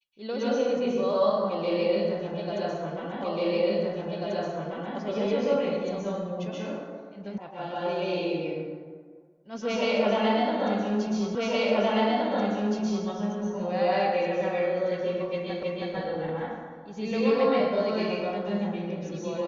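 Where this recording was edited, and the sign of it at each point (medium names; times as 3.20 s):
3.24 s: repeat of the last 1.74 s
7.38 s: sound stops dead
11.35 s: repeat of the last 1.72 s
15.63 s: repeat of the last 0.32 s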